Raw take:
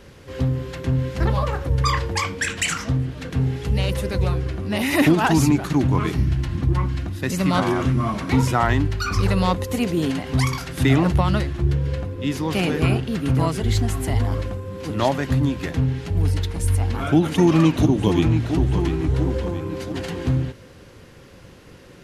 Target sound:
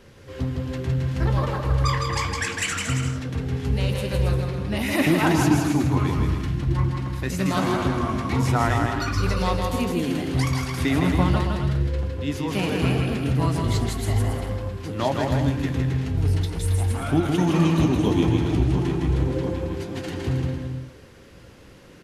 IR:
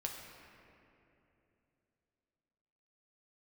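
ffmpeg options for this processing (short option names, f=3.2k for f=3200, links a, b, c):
-af "flanger=delay=8.1:depth=8.5:regen=-55:speed=0.35:shape=triangular,aecho=1:1:160|272|350.4|405.3|443.7:0.631|0.398|0.251|0.158|0.1"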